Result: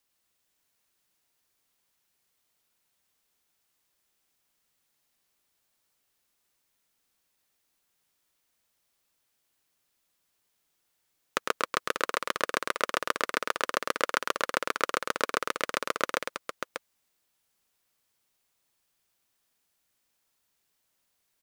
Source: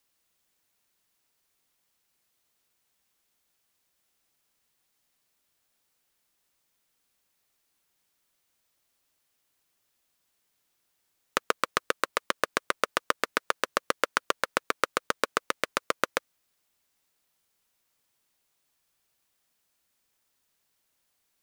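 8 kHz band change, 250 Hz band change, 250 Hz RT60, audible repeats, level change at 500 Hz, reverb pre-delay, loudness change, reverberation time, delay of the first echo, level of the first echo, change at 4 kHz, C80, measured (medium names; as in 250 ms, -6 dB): -0.5 dB, -0.5 dB, no reverb, 2, -0.5 dB, no reverb, -1.0 dB, no reverb, 105 ms, -5.0 dB, -0.5 dB, no reverb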